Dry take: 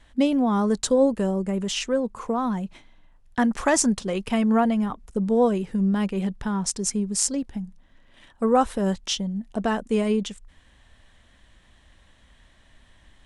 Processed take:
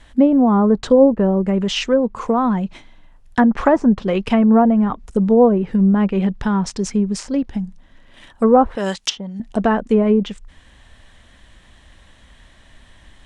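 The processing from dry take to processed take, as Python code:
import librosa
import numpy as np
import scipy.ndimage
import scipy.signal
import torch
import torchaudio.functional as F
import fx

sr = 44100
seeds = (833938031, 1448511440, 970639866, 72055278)

y = fx.tilt_eq(x, sr, slope=4.0, at=(8.75, 9.4))
y = fx.env_lowpass_down(y, sr, base_hz=970.0, full_db=-17.5)
y = y * librosa.db_to_amplitude(8.0)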